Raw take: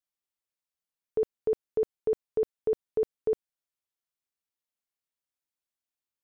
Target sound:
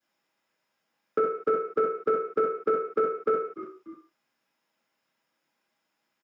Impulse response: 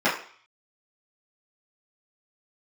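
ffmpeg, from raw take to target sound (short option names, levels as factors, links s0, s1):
-filter_complex "[0:a]aeval=exprs='0.0944*sin(PI/2*1.58*val(0)/0.0944)':c=same,asplit=3[s0][s1][s2];[s1]adelay=292,afreqshift=-57,volume=0.0794[s3];[s2]adelay=584,afreqshift=-114,volume=0.0254[s4];[s0][s3][s4]amix=inputs=3:normalize=0[s5];[1:a]atrim=start_sample=2205,afade=t=out:st=0.25:d=0.01,atrim=end_sample=11466[s6];[s5][s6]afir=irnorm=-1:irlink=0,acrossover=split=130|410|1100[s7][s8][s9][s10];[s7]acompressor=threshold=0.002:ratio=4[s11];[s8]acompressor=threshold=0.0282:ratio=4[s12];[s9]acompressor=threshold=0.0708:ratio=4[s13];[s10]acompressor=threshold=0.0282:ratio=4[s14];[s11][s12][s13][s14]amix=inputs=4:normalize=0,volume=0.596"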